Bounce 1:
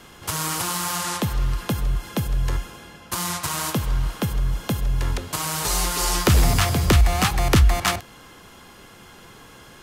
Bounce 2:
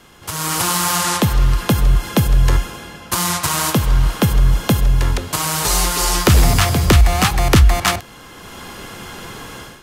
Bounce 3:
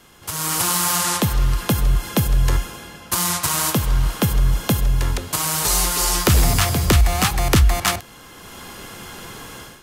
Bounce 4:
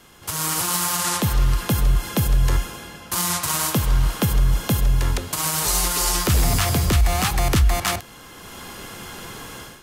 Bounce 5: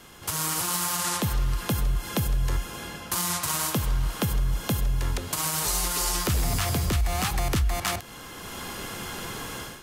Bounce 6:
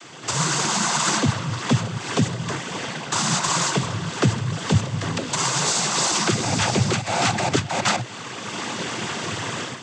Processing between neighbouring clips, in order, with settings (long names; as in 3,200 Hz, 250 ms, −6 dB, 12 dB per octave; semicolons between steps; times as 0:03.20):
automatic gain control gain up to 14 dB; level −1 dB
high-shelf EQ 6,800 Hz +6 dB; level −4 dB
brickwall limiter −9.5 dBFS, peak gain reduction 8 dB
downward compressor 2 to 1, threshold −29 dBFS, peak gain reduction 9 dB; level +1 dB
cochlear-implant simulation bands 16; level +8.5 dB